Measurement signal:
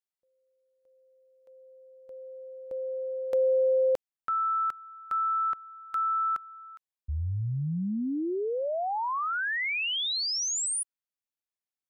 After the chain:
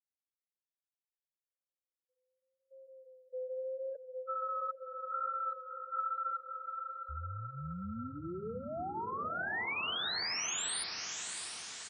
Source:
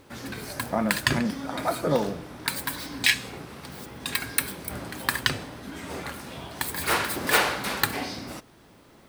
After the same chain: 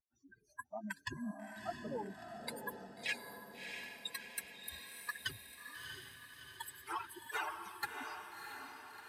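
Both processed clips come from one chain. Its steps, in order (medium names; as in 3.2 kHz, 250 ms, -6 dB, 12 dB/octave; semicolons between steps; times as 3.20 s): expander on every frequency bin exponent 3; high-pass 71 Hz; spectral gate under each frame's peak -25 dB strong; treble shelf 4.1 kHz -10.5 dB; reverse; compression 6:1, threshold -39 dBFS; reverse; tilt shelf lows -3.5 dB, about 770 Hz; vibrato 0.82 Hz 41 cents; hard clipper -30.5 dBFS; flange 1.1 Hz, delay 1.2 ms, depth 5.1 ms, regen -51%; on a send: echo that smears into a reverb 662 ms, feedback 57%, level -5 dB; on the sum: resampled via 32 kHz; trim +4 dB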